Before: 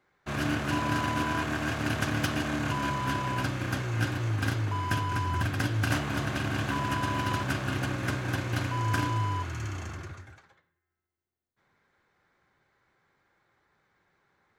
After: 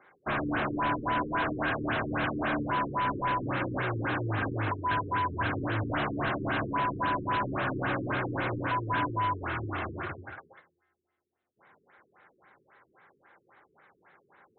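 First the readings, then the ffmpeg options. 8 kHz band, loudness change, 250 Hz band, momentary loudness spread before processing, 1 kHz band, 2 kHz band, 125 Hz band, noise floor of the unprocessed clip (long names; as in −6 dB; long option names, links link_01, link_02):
below −35 dB, −0.5 dB, −1.0 dB, 4 LU, +3.0 dB, 0.0 dB, −5.5 dB, −84 dBFS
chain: -filter_complex "[0:a]asplit=2[link_01][link_02];[link_02]highpass=frequency=720:poles=1,volume=29dB,asoftclip=type=tanh:threshold=-12dB[link_03];[link_01][link_03]amix=inputs=2:normalize=0,lowpass=frequency=1800:poles=1,volume=-6dB,afftfilt=real='re*lt(b*sr/1024,440*pow(4200/440,0.5+0.5*sin(2*PI*3.7*pts/sr)))':imag='im*lt(b*sr/1024,440*pow(4200/440,0.5+0.5*sin(2*PI*3.7*pts/sr)))':win_size=1024:overlap=0.75,volume=-7dB"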